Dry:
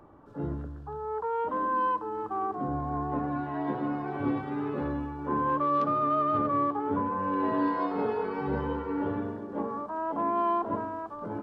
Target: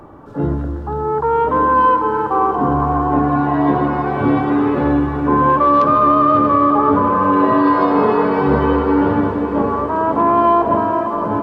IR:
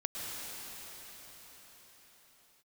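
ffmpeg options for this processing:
-filter_complex "[0:a]asplit=2[a][b];[1:a]atrim=start_sample=2205,asetrate=31311,aresample=44100[c];[b][c]afir=irnorm=-1:irlink=0,volume=-9dB[d];[a][d]amix=inputs=2:normalize=0,alimiter=level_in=15.5dB:limit=-1dB:release=50:level=0:latency=1,volume=-3.5dB"

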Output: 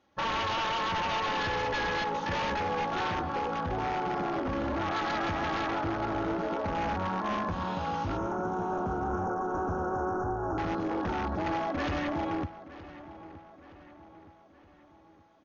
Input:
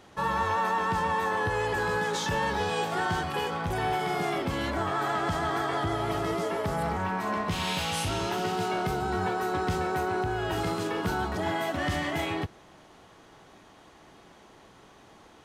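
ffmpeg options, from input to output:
-filter_complex "[0:a]highpass=41,afwtdn=0.0316,highshelf=f=9.3k:g=-10,aecho=1:1:3.6:0.49,aeval=exprs='0.0531*(abs(mod(val(0)/0.0531+3,4)-2)-1)':c=same,asettb=1/sr,asplit=3[a][b][c];[a]atrim=end=8.174[d];[b]atrim=start=8.17:end=10.58,asetpts=PTS-STARTPTS,afade=t=in:d=0.004:c=qsin,afade=t=out:st=2.406:d=0.004:c=qsin,asuperstop=centerf=3000:order=20:qfactor=0.76[e];[c]atrim=start=10.576[f];[d][e]acrossfade=d=0.004:c1=hsin:c2=qsin[g];[g][f]acrossfade=d=0.004:c1=qsin:c2=hsin,asplit=2[h][i];[i]adelay=919,lowpass=f=4.3k:p=1,volume=-16dB,asplit=2[j][k];[k]adelay=919,lowpass=f=4.3k:p=1,volume=0.51,asplit=2[l][m];[m]adelay=919,lowpass=f=4.3k:p=1,volume=0.51,asplit=2[n][o];[o]adelay=919,lowpass=f=4.3k:p=1,volume=0.51,asplit=2[p][q];[q]adelay=919,lowpass=f=4.3k:p=1,volume=0.51[r];[h][j][l][n][p][r]amix=inputs=6:normalize=0" -ar 48000 -c:a ac3 -b:a 48k

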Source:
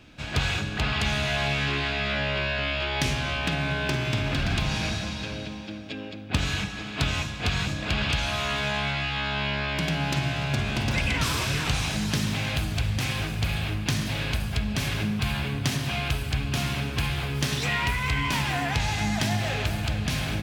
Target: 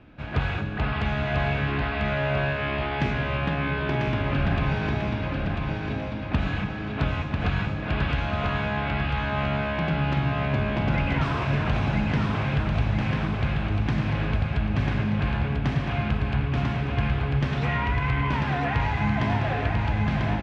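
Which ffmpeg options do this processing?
-af "lowpass=1.7k,aecho=1:1:994|1988|2982|3976|4970|5964|6958:0.631|0.322|0.164|0.0837|0.0427|0.0218|0.0111,volume=1.5dB"

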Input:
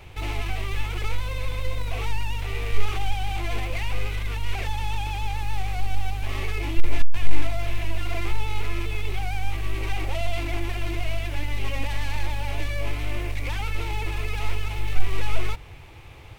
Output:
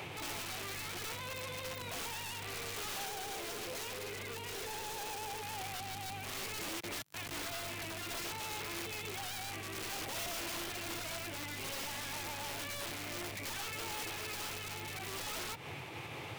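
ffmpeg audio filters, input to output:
-filter_complex "[0:a]highpass=f=130:w=0.5412,highpass=f=130:w=1.3066,aeval=exprs='(mod(28.2*val(0)+1,2)-1)/28.2':c=same,asettb=1/sr,asplit=3[a][b][c];[a]atrim=end=3.054[d];[b]atrim=start=3.05:end=5.42,asetpts=PTS-STARTPTS,afade=t=in:d=0.004:c=qsin,afade=t=out:st=2.366:d=0.004:c=qsin,equalizer=f=430:w=4.2:g=13.5[e];[c]atrim=start=5.416[f];[d][e]acrossfade=d=0.004:c1=hsin:c2=qsin[g];[g][f]acrossfade=d=0.004:c1=qsin:c2=hsin,alimiter=level_in=21.5dB:limit=-24dB:level=0:latency=1:release=315,volume=-21.5dB,volume=10.5dB"

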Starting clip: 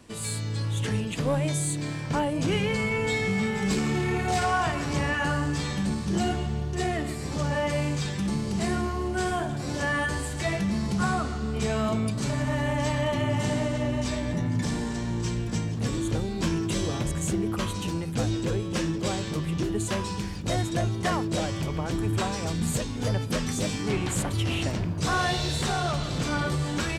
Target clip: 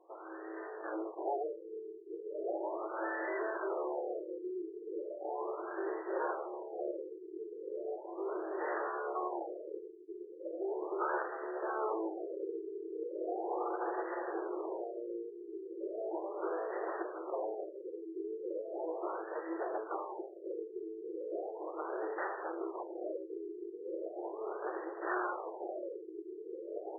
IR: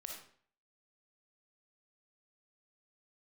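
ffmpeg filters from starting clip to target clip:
-af "aeval=exprs='abs(val(0))':c=same,afftfilt=real='re*between(b*sr/4096,320,4200)':imag='im*between(b*sr/4096,320,4200)':win_size=4096:overlap=0.75,afftfilt=real='re*lt(b*sr/1024,450*pow(2000/450,0.5+0.5*sin(2*PI*0.37*pts/sr)))':imag='im*lt(b*sr/1024,450*pow(2000/450,0.5+0.5*sin(2*PI*0.37*pts/sr)))':win_size=1024:overlap=0.75,volume=-2.5dB"

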